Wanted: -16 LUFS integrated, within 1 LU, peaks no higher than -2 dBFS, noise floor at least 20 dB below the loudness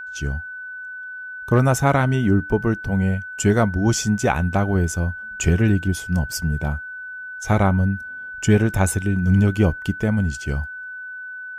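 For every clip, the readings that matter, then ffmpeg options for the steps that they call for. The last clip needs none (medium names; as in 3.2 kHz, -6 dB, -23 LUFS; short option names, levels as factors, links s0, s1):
steady tone 1.5 kHz; tone level -31 dBFS; loudness -20.5 LUFS; peak level -4.5 dBFS; loudness target -16.0 LUFS
-> -af "bandreject=f=1500:w=30"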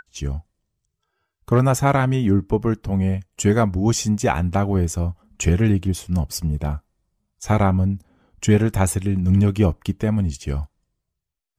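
steady tone not found; loudness -21.0 LUFS; peak level -4.5 dBFS; loudness target -16.0 LUFS
-> -af "volume=1.78,alimiter=limit=0.794:level=0:latency=1"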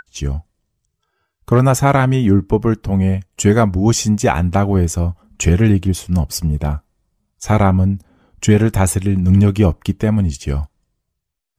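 loudness -16.0 LUFS; peak level -2.0 dBFS; noise floor -75 dBFS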